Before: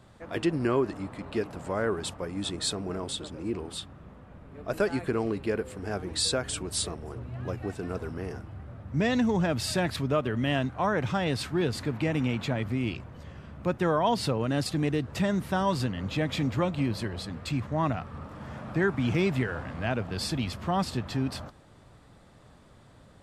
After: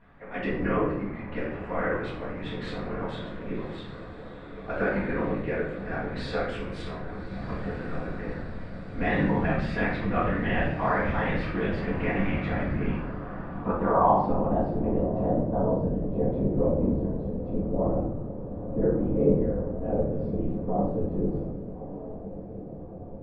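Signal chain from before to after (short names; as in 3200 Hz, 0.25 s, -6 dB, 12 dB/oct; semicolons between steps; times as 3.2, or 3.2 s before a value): 1.9–2.66 CVSD 64 kbps; diffused feedback echo 1.218 s, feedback 65%, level -13 dB; whisperiser; shoebox room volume 180 m³, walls mixed, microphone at 1.8 m; low-pass sweep 2000 Hz -> 500 Hz, 12.36–15.76; gain -8 dB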